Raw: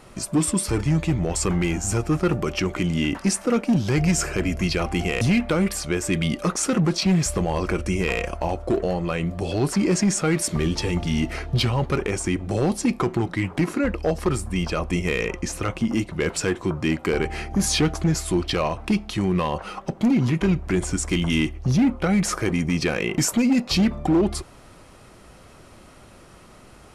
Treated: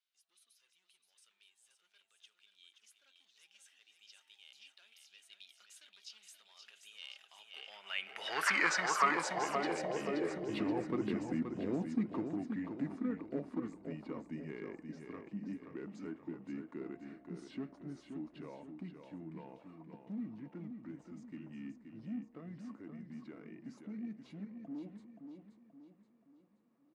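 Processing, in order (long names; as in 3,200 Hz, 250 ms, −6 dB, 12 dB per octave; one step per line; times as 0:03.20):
source passing by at 0:08.51, 45 m/s, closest 7.9 metres
bass and treble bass +2 dB, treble −7 dB
repeating echo 526 ms, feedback 43%, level −7 dB
high-pass filter sweep 3,900 Hz → 240 Hz, 0:07.30–0:11.05
high-shelf EQ 2,700 Hz −10 dB
level +6 dB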